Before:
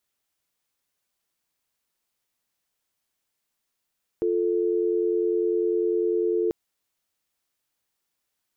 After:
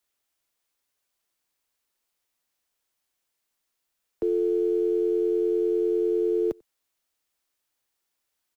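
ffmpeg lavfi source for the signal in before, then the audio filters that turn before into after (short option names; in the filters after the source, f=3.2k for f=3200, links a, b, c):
-f lavfi -i "aevalsrc='0.0668*(sin(2*PI*350*t)+sin(2*PI*440*t))':d=2.29:s=44100"
-filter_complex "[0:a]acrossover=split=120|190|440[a][b][c][d];[b]acrusher=bits=6:dc=4:mix=0:aa=0.000001[e];[a][e][c][d]amix=inputs=4:normalize=0,asplit=2[f][g];[g]adelay=93.29,volume=-29dB,highshelf=f=4k:g=-2.1[h];[f][h]amix=inputs=2:normalize=0"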